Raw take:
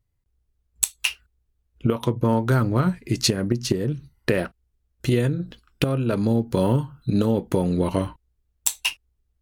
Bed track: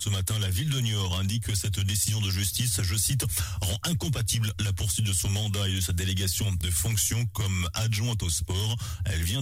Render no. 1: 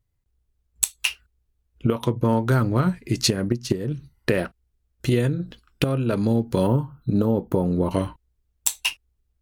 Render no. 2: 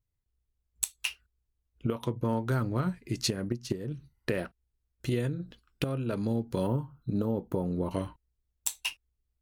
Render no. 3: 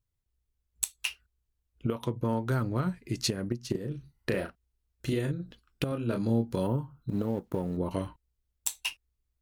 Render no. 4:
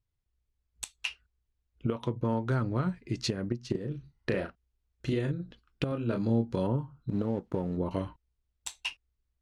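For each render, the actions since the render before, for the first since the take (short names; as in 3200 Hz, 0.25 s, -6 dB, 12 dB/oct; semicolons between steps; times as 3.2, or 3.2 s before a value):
3.49–3.91 upward expander, over -32 dBFS; 6.67–7.91 band shelf 4200 Hz -10.5 dB 2.9 oct
gain -9 dB
3.71–5.32 doubler 36 ms -6 dB; 5.89–6.56 doubler 26 ms -5 dB; 7.09–7.77 G.711 law mismatch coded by A
air absorption 85 m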